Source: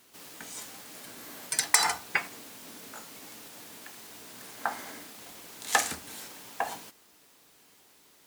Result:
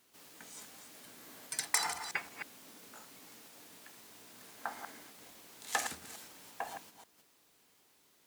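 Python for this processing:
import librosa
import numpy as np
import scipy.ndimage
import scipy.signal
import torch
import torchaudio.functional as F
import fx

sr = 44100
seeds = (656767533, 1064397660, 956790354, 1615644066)

y = fx.reverse_delay(x, sr, ms=176, wet_db=-8.0)
y = y * librosa.db_to_amplitude(-9.0)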